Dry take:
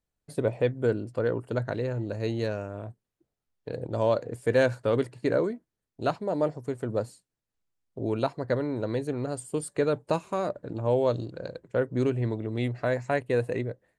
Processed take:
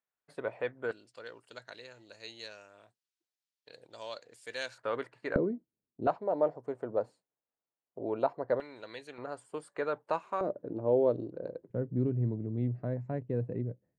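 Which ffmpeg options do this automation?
ffmpeg -i in.wav -af "asetnsamples=nb_out_samples=441:pad=0,asendcmd='0.91 bandpass f 4600;4.78 bandpass f 1400;5.36 bandpass f 250;6.07 bandpass f 720;8.6 bandpass f 2900;9.18 bandpass f 1200;10.41 bandpass f 380;11.7 bandpass f 160',bandpass=frequency=1400:width_type=q:width=1.1:csg=0" out.wav

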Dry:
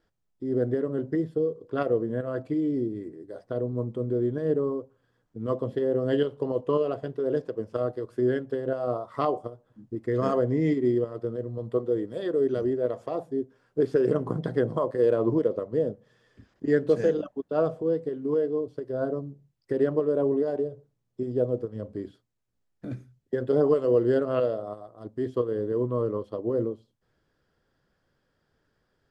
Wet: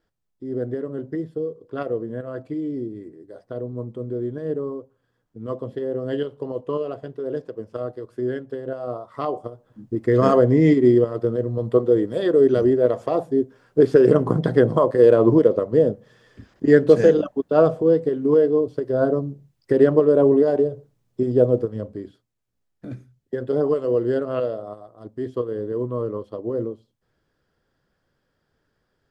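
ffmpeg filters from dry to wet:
ffmpeg -i in.wav -af "volume=9dB,afade=type=in:start_time=9.22:duration=0.83:silence=0.316228,afade=type=out:start_time=21.59:duration=0.41:silence=0.398107" out.wav

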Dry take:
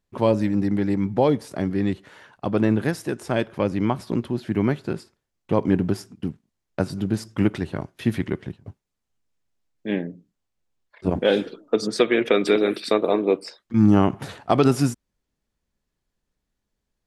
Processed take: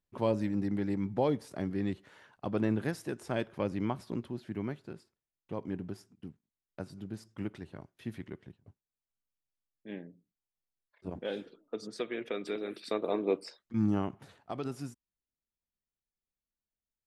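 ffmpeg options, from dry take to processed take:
ffmpeg -i in.wav -af "volume=-1dB,afade=type=out:start_time=3.75:duration=1.16:silence=0.421697,afade=type=in:start_time=12.66:duration=0.75:silence=0.354813,afade=type=out:start_time=13.41:duration=0.84:silence=0.266073" out.wav

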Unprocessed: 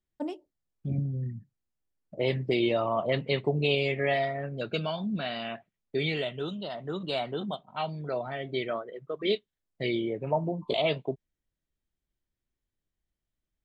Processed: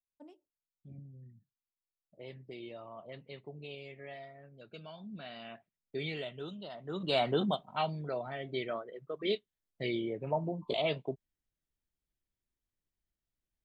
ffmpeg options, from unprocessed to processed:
ffmpeg -i in.wav -af "volume=4dB,afade=type=in:start_time=4.66:duration=1.3:silence=0.266073,afade=type=in:start_time=6.85:duration=0.46:silence=0.237137,afade=type=out:start_time=7.31:duration=0.84:silence=0.354813" out.wav

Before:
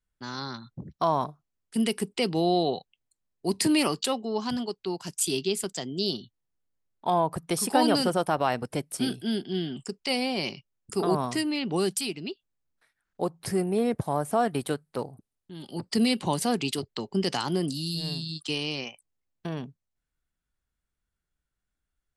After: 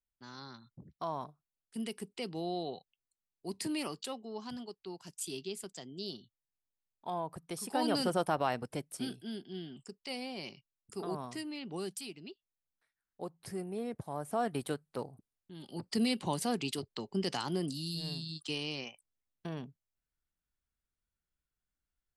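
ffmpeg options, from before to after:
ffmpeg -i in.wav -af "volume=1dB,afade=type=in:start_time=7.65:duration=0.56:silence=0.398107,afade=type=out:start_time=8.21:duration=1.09:silence=0.398107,afade=type=in:start_time=14.09:duration=0.43:silence=0.501187" out.wav

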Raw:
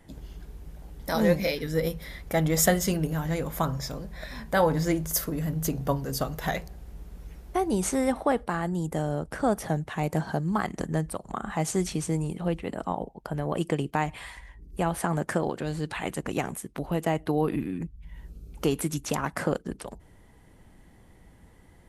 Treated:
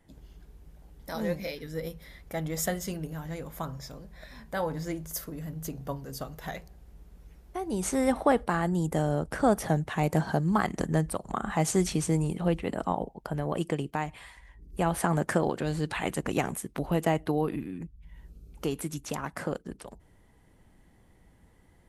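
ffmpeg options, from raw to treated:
ffmpeg -i in.wav -af "volume=10.5dB,afade=type=in:start_time=7.6:duration=0.6:silence=0.316228,afade=type=out:start_time=12.81:duration=1.56:silence=0.334965,afade=type=in:start_time=14.37:duration=0.59:silence=0.354813,afade=type=out:start_time=17.05:duration=0.56:silence=0.473151" out.wav

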